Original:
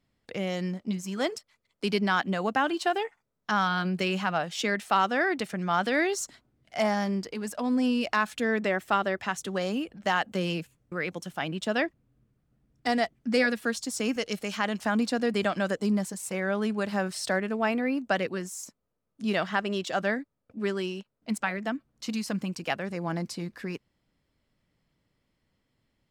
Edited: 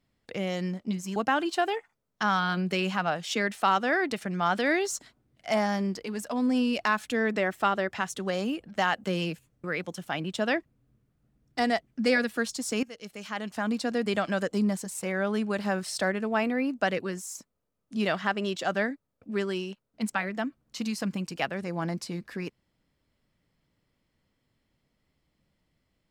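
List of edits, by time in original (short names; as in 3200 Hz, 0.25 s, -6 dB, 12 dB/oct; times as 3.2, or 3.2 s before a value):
1.16–2.44 cut
14.11–15.96 fade in equal-power, from -16.5 dB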